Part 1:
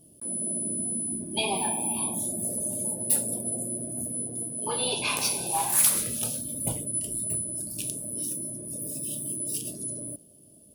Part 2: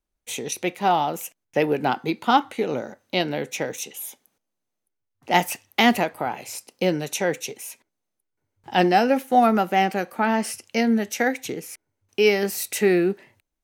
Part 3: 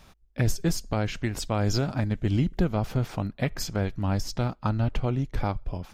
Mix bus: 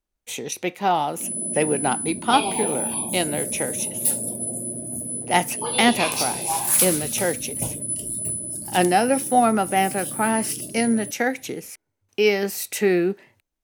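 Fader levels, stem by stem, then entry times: +2.5 dB, -0.5 dB, mute; 0.95 s, 0.00 s, mute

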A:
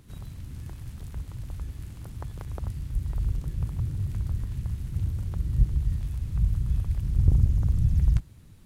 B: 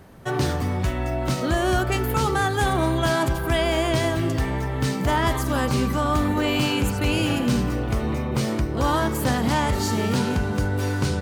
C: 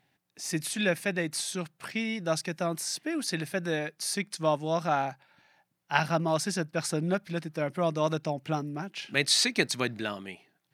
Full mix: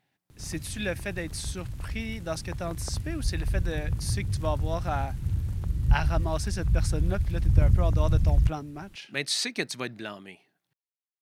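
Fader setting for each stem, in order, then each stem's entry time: 0.0 dB, mute, -4.0 dB; 0.30 s, mute, 0.00 s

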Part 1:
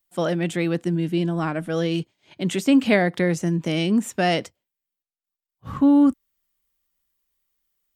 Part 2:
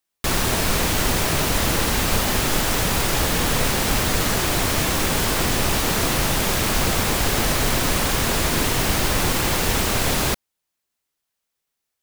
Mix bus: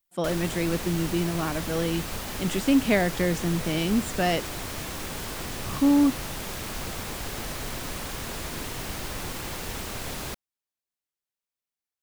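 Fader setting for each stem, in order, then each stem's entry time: -4.0 dB, -13.5 dB; 0.00 s, 0.00 s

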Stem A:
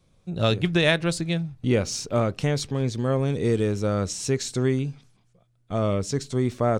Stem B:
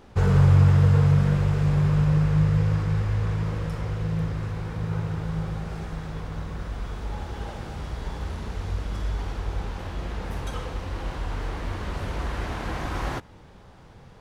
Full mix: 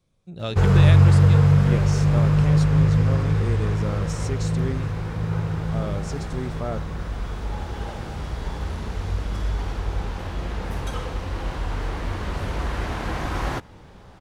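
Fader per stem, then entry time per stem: -7.5 dB, +3.0 dB; 0.00 s, 0.40 s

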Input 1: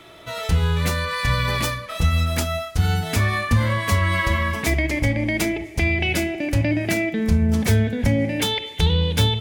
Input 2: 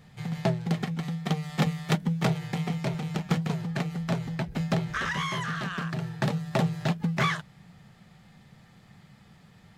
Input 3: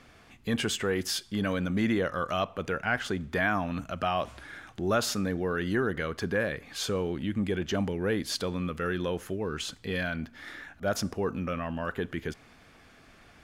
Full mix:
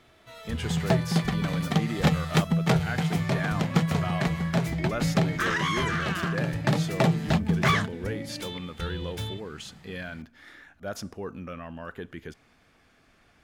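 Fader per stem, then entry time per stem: -16.0 dB, +3.0 dB, -6.0 dB; 0.00 s, 0.45 s, 0.00 s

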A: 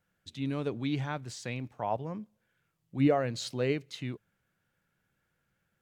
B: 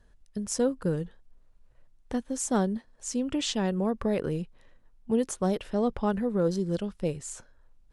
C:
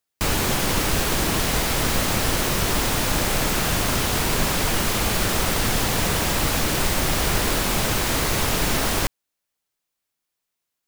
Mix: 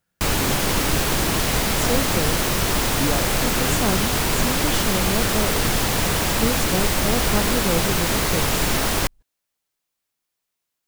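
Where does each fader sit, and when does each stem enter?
-1.0 dB, +1.0 dB, +1.0 dB; 0.00 s, 1.30 s, 0.00 s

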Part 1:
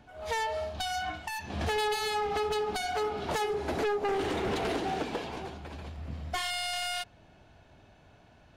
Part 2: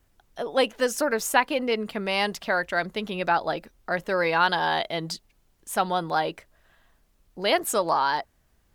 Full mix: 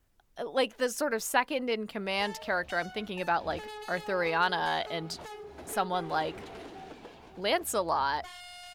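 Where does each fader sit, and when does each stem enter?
-13.5 dB, -5.5 dB; 1.90 s, 0.00 s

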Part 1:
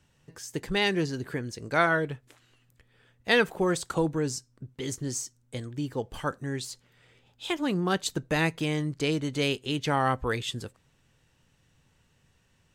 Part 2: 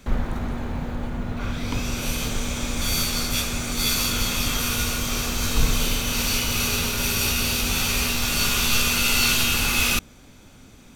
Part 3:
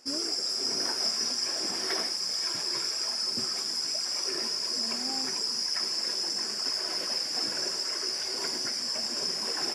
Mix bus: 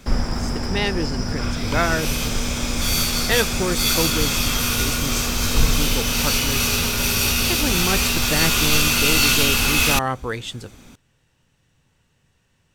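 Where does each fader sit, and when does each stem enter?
+2.0 dB, +3.0 dB, -6.0 dB; 0.00 s, 0.00 s, 0.00 s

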